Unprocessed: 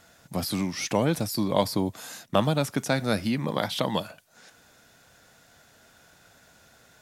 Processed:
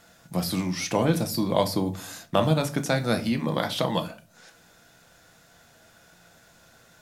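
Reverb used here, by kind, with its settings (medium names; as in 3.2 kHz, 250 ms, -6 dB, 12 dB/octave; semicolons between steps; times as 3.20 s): simulated room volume 200 m³, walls furnished, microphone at 0.76 m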